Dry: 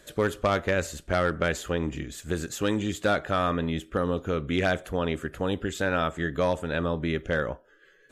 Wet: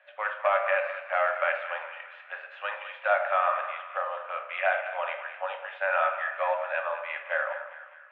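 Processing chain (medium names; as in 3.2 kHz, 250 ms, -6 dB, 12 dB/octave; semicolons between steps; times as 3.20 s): elliptic low-pass 2.7 kHz, stop band 80 dB; dynamic bell 1.1 kHz, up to +4 dB, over -35 dBFS, Q 0.75; rippled Chebyshev high-pass 560 Hz, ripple 3 dB; two-band feedback delay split 1 kHz, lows 105 ms, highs 204 ms, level -11 dB; on a send at -4 dB: reverberation RT60 0.80 s, pre-delay 5 ms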